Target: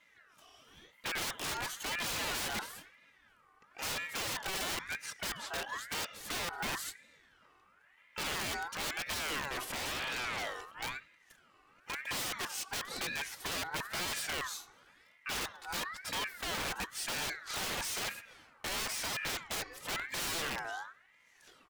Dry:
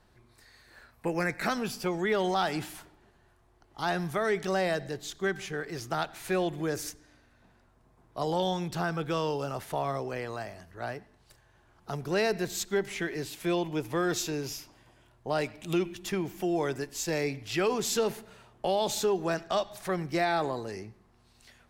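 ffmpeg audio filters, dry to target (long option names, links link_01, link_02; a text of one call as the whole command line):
ffmpeg -i in.wav -filter_complex "[0:a]aecho=1:1:2.7:0.71,acrossover=split=110|5500[link_01][link_02][link_03];[link_02]aeval=exprs='(mod(20*val(0)+1,2)-1)/20':channel_layout=same[link_04];[link_01][link_04][link_03]amix=inputs=3:normalize=0,asplit=3[link_05][link_06][link_07];[link_05]afade=type=out:start_time=9.5:duration=0.02[link_08];[link_06]acontrast=86,afade=type=in:start_time=9.5:duration=0.02,afade=type=out:start_time=10.7:duration=0.02[link_09];[link_07]afade=type=in:start_time=10.7:duration=0.02[link_10];[link_08][link_09][link_10]amix=inputs=3:normalize=0,aeval=exprs='0.0422*(abs(mod(val(0)/0.0422+3,4)-2)-1)':channel_layout=same,aeval=exprs='val(0)*sin(2*PI*1600*n/s+1600*0.3/0.99*sin(2*PI*0.99*n/s))':channel_layout=same,volume=-2dB" out.wav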